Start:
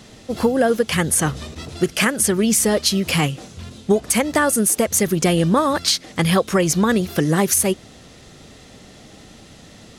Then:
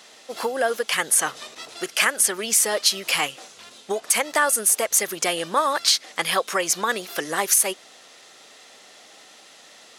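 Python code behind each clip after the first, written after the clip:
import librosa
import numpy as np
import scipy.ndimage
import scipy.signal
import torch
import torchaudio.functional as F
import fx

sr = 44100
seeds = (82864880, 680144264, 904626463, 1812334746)

y = scipy.signal.sosfilt(scipy.signal.butter(2, 690.0, 'highpass', fs=sr, output='sos'), x)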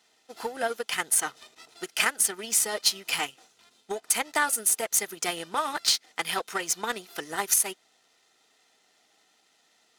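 y = fx.power_curve(x, sr, exponent=1.4)
y = fx.notch_comb(y, sr, f0_hz=560.0)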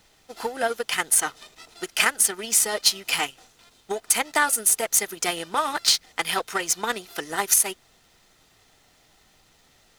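y = fx.dmg_noise_colour(x, sr, seeds[0], colour='pink', level_db=-67.0)
y = y * 10.0 ** (4.0 / 20.0)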